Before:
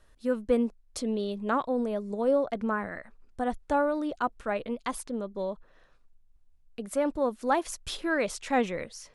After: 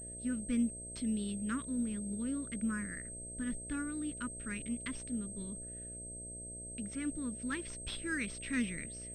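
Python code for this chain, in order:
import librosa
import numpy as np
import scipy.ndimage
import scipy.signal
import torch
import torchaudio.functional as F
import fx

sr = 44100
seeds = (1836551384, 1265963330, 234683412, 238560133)

y = scipy.signal.sosfilt(scipy.signal.cheby1(2, 1.0, [240.0, 2000.0], 'bandstop', fs=sr, output='sos'), x)
y = fx.dmg_buzz(y, sr, base_hz=60.0, harmonics=11, level_db=-48.0, tilt_db=-4, odd_only=False)
y = fx.pwm(y, sr, carrier_hz=8300.0)
y = F.gain(torch.from_numpy(y), -2.5).numpy()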